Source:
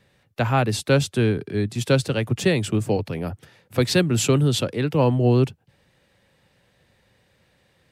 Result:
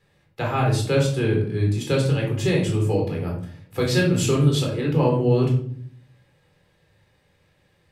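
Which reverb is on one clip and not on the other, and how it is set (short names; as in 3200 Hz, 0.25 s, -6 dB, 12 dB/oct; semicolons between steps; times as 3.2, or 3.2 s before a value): shoebox room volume 760 m³, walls furnished, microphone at 4 m; gain -7 dB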